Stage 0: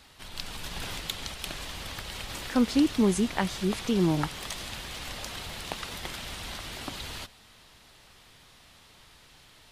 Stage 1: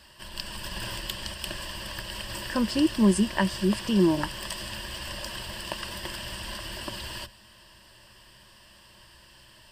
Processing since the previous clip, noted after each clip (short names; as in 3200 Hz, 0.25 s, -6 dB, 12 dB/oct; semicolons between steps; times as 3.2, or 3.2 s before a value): ripple EQ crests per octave 1.3, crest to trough 12 dB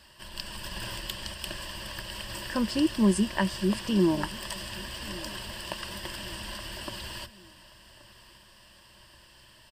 feedback echo 1.128 s, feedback 43%, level -20 dB; gain -2 dB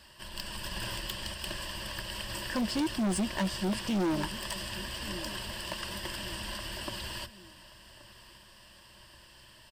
hard clip -26.5 dBFS, distortion -7 dB